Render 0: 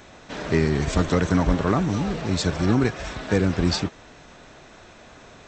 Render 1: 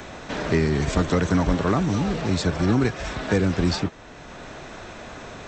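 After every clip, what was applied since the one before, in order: three bands compressed up and down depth 40%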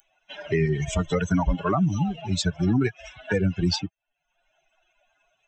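expander on every frequency bin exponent 3; peak limiter -21 dBFS, peak gain reduction 6.5 dB; trim +7 dB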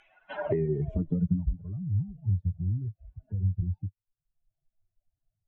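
compression, threshold -30 dBFS, peak gain reduction 11.5 dB; low-pass sweep 2.3 kHz -> 100 Hz, 0.03–1.53 s; trim +3.5 dB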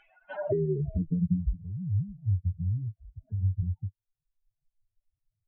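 spectral contrast enhancement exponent 1.6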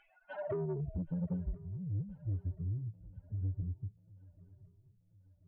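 saturation -25 dBFS, distortion -14 dB; shuffle delay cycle 1037 ms, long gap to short 3:1, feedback 46%, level -22.5 dB; trim -5.5 dB

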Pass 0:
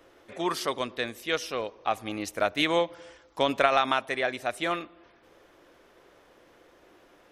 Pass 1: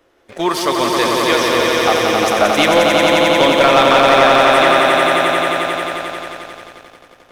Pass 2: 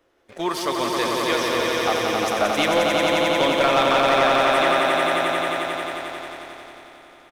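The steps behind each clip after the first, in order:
echo with a slow build-up 89 ms, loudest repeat 5, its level -4 dB; waveshaping leveller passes 2; trim +3.5 dB
feedback delay 916 ms, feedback 26%, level -17 dB; trim -7.5 dB

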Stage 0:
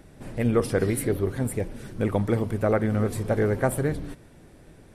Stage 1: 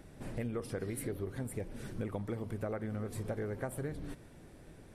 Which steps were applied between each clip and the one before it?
compression 6:1, threshold -31 dBFS, peak gain reduction 14 dB; trim -4 dB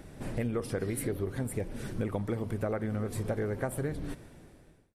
fade out at the end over 0.82 s; trim +5.5 dB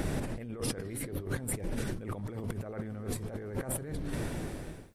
compressor with a negative ratio -44 dBFS, ratio -1; trim +7 dB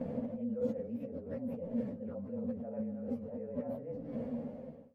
frequency axis rescaled in octaves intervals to 109%; two resonant band-passes 350 Hz, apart 1.1 oct; trim +9.5 dB

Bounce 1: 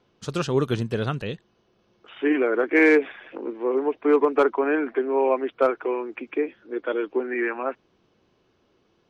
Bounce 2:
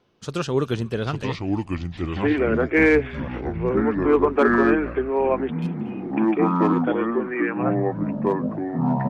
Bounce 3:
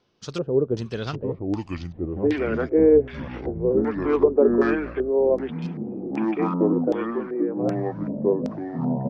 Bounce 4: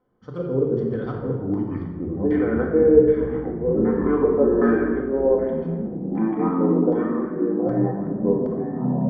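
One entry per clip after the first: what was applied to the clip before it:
ever faster or slower copies 762 ms, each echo -5 st, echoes 3; frequency-shifting echo 239 ms, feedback 34%, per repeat -65 Hz, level -23 dB; spectral replace 5.55–6.06 s, 220–2400 Hz both
LFO low-pass square 1.3 Hz 500–5400 Hz; trim -4 dB
Savitzky-Golay filter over 41 samples; simulated room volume 1300 m³, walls mixed, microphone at 2 m; tape noise reduction on one side only decoder only; trim -2.5 dB

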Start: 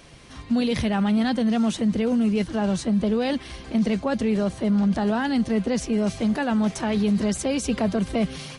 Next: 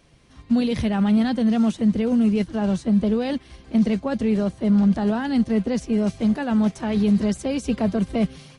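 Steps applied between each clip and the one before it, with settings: bass shelf 410 Hz +5 dB; upward expansion 1.5:1, over -36 dBFS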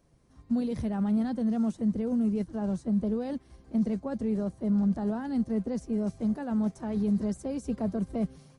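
peaking EQ 2.9 kHz -13 dB 1.6 oct; trim -8 dB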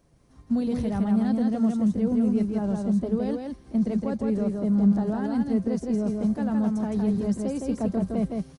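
delay 163 ms -3.5 dB; trim +3 dB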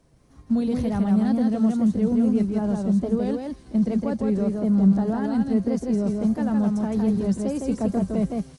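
feedback echo behind a high-pass 328 ms, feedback 67%, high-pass 3.6 kHz, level -11 dB; wow and flutter 60 cents; trim +2.5 dB

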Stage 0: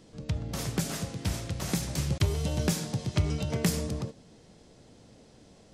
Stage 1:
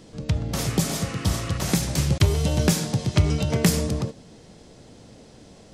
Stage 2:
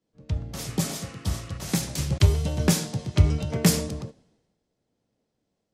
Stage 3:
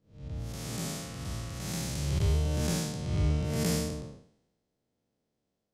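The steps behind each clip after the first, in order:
spectral replace 0.67–1.55 s, 1–3 kHz; trim +7.5 dB
three bands expanded up and down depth 100%; trim -5 dB
spectral blur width 218 ms; trim -2.5 dB

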